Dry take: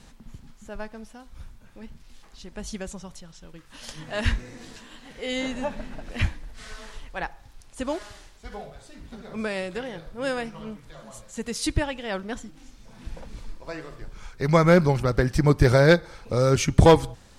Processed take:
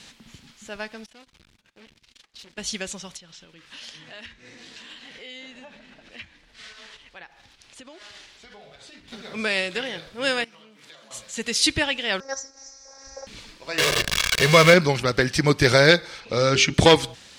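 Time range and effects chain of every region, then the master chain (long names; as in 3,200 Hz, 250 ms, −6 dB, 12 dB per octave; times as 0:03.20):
0:01.06–0:02.58: noise gate −48 dBFS, range −22 dB + tube saturation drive 48 dB, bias 0.5 + highs frequency-modulated by the lows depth 0.23 ms
0:03.17–0:09.08: downward compressor 5 to 1, threshold −45 dBFS + high-shelf EQ 7,300 Hz −10 dB
0:10.44–0:11.11: high-pass filter 210 Hz + downward compressor 20 to 1, threshold −49 dBFS
0:12.20–0:13.27: drawn EQ curve 100 Hz 0 dB, 170 Hz −28 dB, 500 Hz +8 dB, 1,800 Hz −1 dB, 3,100 Hz −26 dB, 5,800 Hz +14 dB, 10,000 Hz −22 dB + phases set to zero 270 Hz
0:13.78–0:14.74: converter with a step at zero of −20.5 dBFS + comb filter 1.8 ms, depth 52%
0:16.20–0:16.74: low-pass filter 5,500 Hz + mains-hum notches 50/100/150/200/250/300/350/400 Hz
whole clip: meter weighting curve D; boost into a limiter +2.5 dB; level −1 dB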